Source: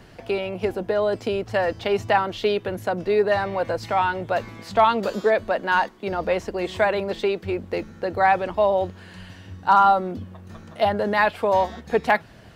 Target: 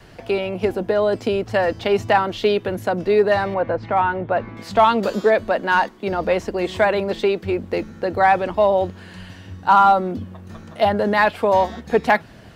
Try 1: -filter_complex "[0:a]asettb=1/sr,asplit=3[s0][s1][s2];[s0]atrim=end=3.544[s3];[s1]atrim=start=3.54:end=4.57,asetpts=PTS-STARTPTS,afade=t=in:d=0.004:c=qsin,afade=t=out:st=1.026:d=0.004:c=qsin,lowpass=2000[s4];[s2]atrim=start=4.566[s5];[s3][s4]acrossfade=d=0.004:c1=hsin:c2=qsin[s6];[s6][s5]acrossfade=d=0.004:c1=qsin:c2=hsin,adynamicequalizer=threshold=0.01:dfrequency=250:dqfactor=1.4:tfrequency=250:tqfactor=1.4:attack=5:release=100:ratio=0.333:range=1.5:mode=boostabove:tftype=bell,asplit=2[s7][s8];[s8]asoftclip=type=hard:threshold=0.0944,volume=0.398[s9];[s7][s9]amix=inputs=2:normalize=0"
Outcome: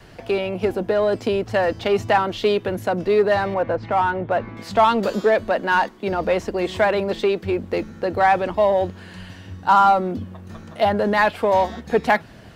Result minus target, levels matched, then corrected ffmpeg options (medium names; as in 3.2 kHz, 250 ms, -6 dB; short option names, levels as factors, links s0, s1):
hard clipper: distortion +12 dB
-filter_complex "[0:a]asettb=1/sr,asplit=3[s0][s1][s2];[s0]atrim=end=3.544[s3];[s1]atrim=start=3.54:end=4.57,asetpts=PTS-STARTPTS,afade=t=in:d=0.004:c=qsin,afade=t=out:st=1.026:d=0.004:c=qsin,lowpass=2000[s4];[s2]atrim=start=4.566[s5];[s3][s4]acrossfade=d=0.004:c1=hsin:c2=qsin[s6];[s6][s5]acrossfade=d=0.004:c1=qsin:c2=hsin,adynamicequalizer=threshold=0.01:dfrequency=250:dqfactor=1.4:tfrequency=250:tqfactor=1.4:attack=5:release=100:ratio=0.333:range=1.5:mode=boostabove:tftype=bell,asplit=2[s7][s8];[s8]asoftclip=type=hard:threshold=0.266,volume=0.398[s9];[s7][s9]amix=inputs=2:normalize=0"